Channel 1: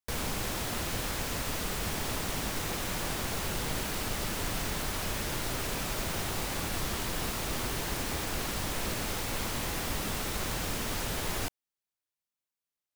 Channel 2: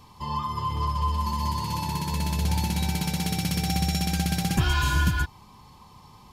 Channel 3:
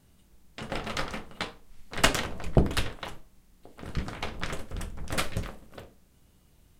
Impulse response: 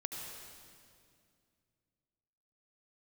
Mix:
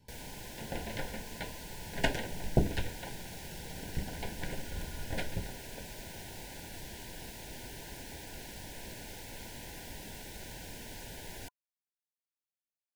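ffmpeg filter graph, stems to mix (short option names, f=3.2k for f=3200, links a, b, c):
-filter_complex "[0:a]volume=-12dB[a];[1:a]acompressor=threshold=-37dB:ratio=2.5,volume=-16.5dB[b];[2:a]lowpass=f=2k:p=1,volume=-5dB[c];[a][b][c]amix=inputs=3:normalize=0,asuperstop=centerf=1200:order=20:qfactor=2.9"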